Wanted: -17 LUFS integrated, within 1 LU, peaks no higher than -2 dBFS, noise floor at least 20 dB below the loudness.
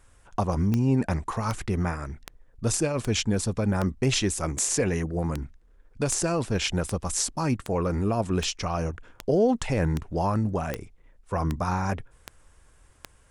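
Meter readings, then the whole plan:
clicks found 17; loudness -27.0 LUFS; peak level -8.5 dBFS; loudness target -17.0 LUFS
-> de-click; trim +10 dB; peak limiter -2 dBFS

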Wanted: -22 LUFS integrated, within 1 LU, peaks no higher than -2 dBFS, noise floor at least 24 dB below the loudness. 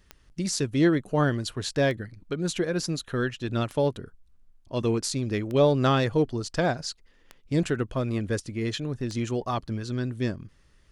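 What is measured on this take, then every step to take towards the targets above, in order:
clicks found 7; loudness -27.0 LUFS; peak level -11.0 dBFS; loudness target -22.0 LUFS
-> de-click; trim +5 dB

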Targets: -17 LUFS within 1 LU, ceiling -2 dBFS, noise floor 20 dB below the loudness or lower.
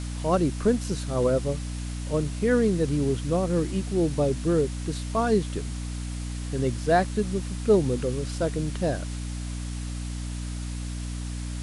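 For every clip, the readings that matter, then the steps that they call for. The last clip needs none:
hum 60 Hz; highest harmonic 300 Hz; hum level -30 dBFS; noise floor -33 dBFS; noise floor target -47 dBFS; loudness -27.0 LUFS; peak level -9.5 dBFS; loudness target -17.0 LUFS
-> hum notches 60/120/180/240/300 Hz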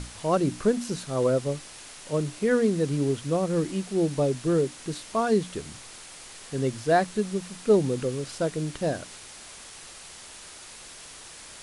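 hum not found; noise floor -45 dBFS; noise floor target -47 dBFS
-> noise print and reduce 6 dB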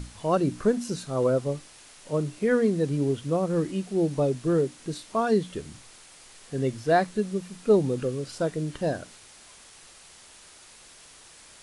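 noise floor -51 dBFS; loudness -26.5 LUFS; peak level -10.0 dBFS; loudness target -17.0 LUFS
-> trim +9.5 dB; peak limiter -2 dBFS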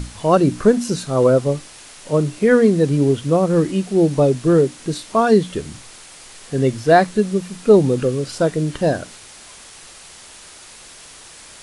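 loudness -17.5 LUFS; peak level -2.0 dBFS; noise floor -42 dBFS

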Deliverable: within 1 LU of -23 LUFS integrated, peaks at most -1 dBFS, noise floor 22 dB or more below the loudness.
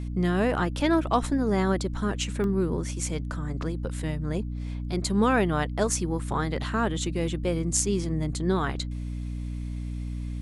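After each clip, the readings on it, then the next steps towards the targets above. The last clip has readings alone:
dropouts 1; longest dropout 1.6 ms; hum 60 Hz; highest harmonic 300 Hz; hum level -30 dBFS; loudness -27.5 LUFS; peak level -6.5 dBFS; loudness target -23.0 LUFS
-> interpolate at 2.44 s, 1.6 ms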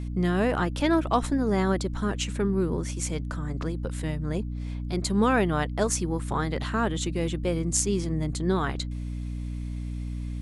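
dropouts 0; hum 60 Hz; highest harmonic 300 Hz; hum level -30 dBFS
-> de-hum 60 Hz, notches 5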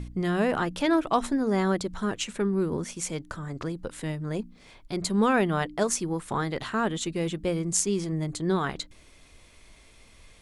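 hum not found; loudness -28.0 LUFS; peak level -6.5 dBFS; loudness target -23.0 LUFS
-> trim +5 dB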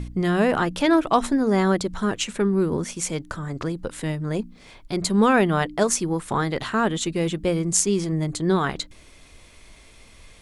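loudness -23.0 LUFS; peak level -1.5 dBFS; noise floor -50 dBFS

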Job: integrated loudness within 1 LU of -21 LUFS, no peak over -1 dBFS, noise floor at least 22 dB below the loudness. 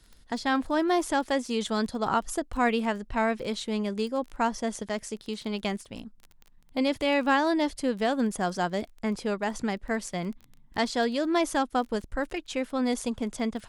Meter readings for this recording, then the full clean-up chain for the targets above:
tick rate 19 per s; loudness -28.5 LUFS; peak level -12.0 dBFS; loudness target -21.0 LUFS
-> de-click; trim +7.5 dB

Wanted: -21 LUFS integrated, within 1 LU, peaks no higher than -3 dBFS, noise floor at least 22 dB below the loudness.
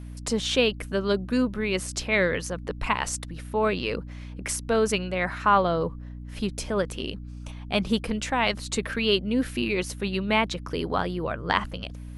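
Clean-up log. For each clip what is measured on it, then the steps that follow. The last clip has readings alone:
hum 60 Hz; highest harmonic 300 Hz; hum level -36 dBFS; loudness -26.5 LUFS; peak level -5.0 dBFS; loudness target -21.0 LUFS
-> de-hum 60 Hz, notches 5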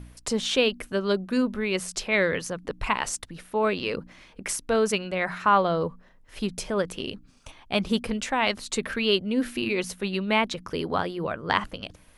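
hum not found; loudness -26.5 LUFS; peak level -5.0 dBFS; loudness target -21.0 LUFS
-> trim +5.5 dB; peak limiter -3 dBFS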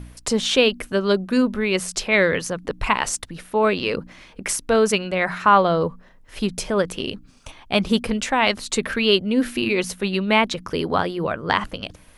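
loudness -21.0 LUFS; peak level -3.0 dBFS; noise floor -50 dBFS

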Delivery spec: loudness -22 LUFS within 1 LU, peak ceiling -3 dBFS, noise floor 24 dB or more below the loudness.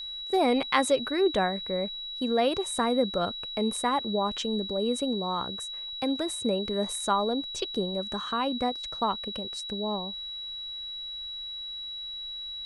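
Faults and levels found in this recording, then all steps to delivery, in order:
steady tone 3.9 kHz; tone level -35 dBFS; loudness -29.0 LUFS; peak level -7.5 dBFS; loudness target -22.0 LUFS
-> band-stop 3.9 kHz, Q 30; trim +7 dB; peak limiter -3 dBFS

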